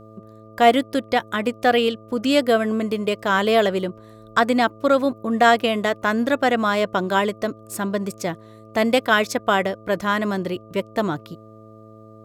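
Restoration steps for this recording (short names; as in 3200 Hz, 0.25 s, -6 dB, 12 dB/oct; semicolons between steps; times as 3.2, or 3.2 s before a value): de-hum 109.1 Hz, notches 6; notch 1200 Hz, Q 30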